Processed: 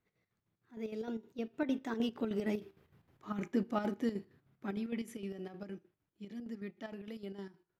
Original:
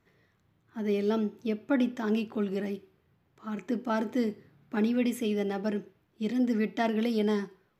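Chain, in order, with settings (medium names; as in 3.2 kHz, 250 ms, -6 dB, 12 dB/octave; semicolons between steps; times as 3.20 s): Doppler pass-by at 2.93 s, 22 m/s, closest 9.9 m; square tremolo 6.5 Hz, depth 60%, duty 60%; trim +3 dB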